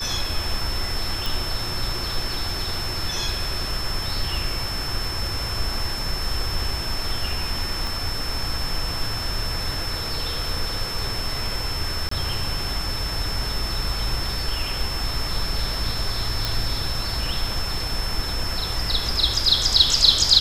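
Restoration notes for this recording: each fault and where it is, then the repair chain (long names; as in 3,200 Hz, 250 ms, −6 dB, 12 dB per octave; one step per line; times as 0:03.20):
whistle 5,300 Hz −29 dBFS
0:01.26: click
0:07.87: click
0:12.09–0:12.11: drop-out 24 ms
0:16.45: click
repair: click removal
notch filter 5,300 Hz, Q 30
repair the gap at 0:12.09, 24 ms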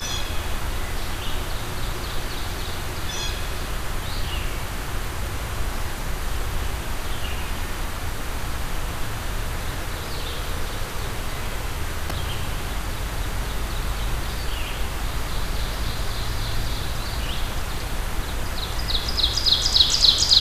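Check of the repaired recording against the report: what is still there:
0:07.87: click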